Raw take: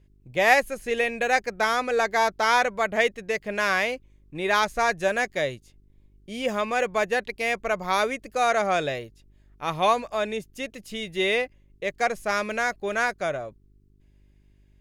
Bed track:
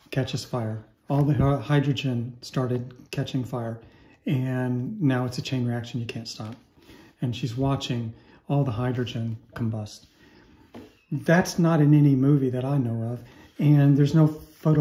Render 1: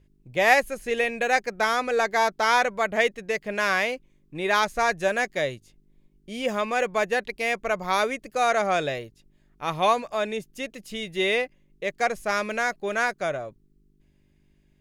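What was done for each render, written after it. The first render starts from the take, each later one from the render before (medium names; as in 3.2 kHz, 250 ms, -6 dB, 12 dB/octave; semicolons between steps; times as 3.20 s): de-hum 50 Hz, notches 2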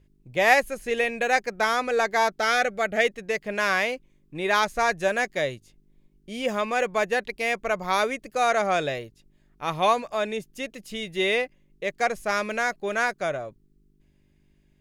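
2.39–3.05 s: Butterworth band-stop 1 kHz, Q 3.1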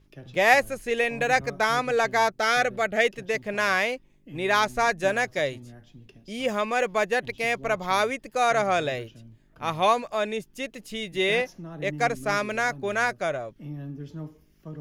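add bed track -19 dB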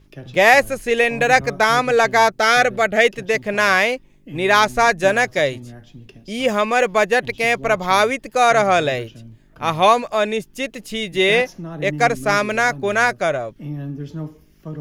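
trim +8 dB; peak limiter -2 dBFS, peak gain reduction 3 dB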